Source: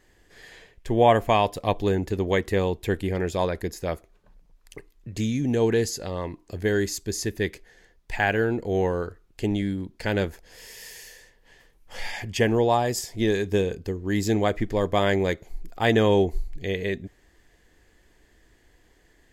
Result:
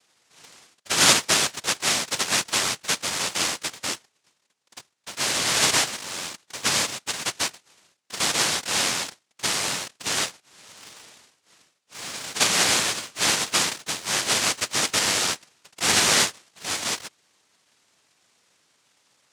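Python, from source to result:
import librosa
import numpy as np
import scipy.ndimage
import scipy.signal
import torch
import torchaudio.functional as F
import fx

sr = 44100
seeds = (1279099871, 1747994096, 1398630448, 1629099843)

p1 = fx.noise_vocoder(x, sr, seeds[0], bands=1)
p2 = fx.quant_dither(p1, sr, seeds[1], bits=6, dither='none')
p3 = p1 + (p2 * 10.0 ** (-10.5 / 20.0))
y = p3 * 10.0 ** (-2.5 / 20.0)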